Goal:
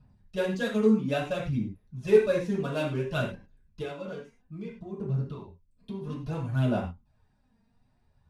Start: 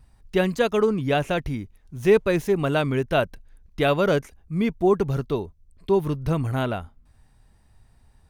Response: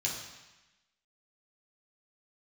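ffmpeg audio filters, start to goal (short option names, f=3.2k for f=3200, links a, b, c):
-filter_complex "[0:a]asettb=1/sr,asplit=3[a][b][c];[a]atrim=end=3.814[d];[b]atrim=start=3.81:end=6.01,asetpts=PTS-STARTPTS,afade=t=in:d=0.004:c=qsin,afade=t=out:st=2.196:d=0.004:c=qsin,acompressor=threshold=-28dB:ratio=12[e];[c]atrim=start=6.006[f];[d][e]acrossfade=d=0.004:c1=hsin:c2=qsin[g];[g][f]acrossfade=d=0.004:c1=qsin:c2=hsin,aphaser=in_gain=1:out_gain=1:delay=4.4:decay=0.62:speed=0.59:type=sinusoidal,adynamicsmooth=sensitivity=7:basefreq=4k[h];[1:a]atrim=start_sample=2205,afade=t=out:st=0.24:d=0.01,atrim=end_sample=11025,asetrate=70560,aresample=44100[i];[h][i]afir=irnorm=-1:irlink=0,volume=-9dB"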